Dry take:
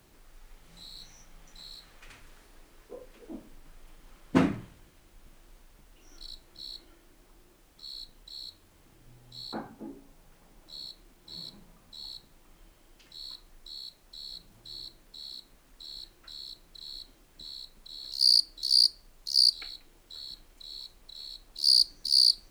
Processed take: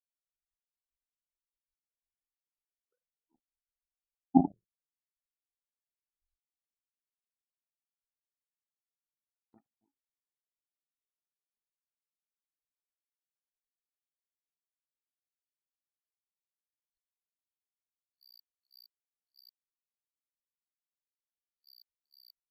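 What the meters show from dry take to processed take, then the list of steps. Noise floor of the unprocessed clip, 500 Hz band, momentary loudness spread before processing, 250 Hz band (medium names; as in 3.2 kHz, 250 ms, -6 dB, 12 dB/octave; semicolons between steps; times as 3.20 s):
-61 dBFS, -8.5 dB, 22 LU, 0.0 dB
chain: spectral contrast enhancement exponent 3.8; tape spacing loss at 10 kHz 35 dB; power-law waveshaper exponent 3; trim +8.5 dB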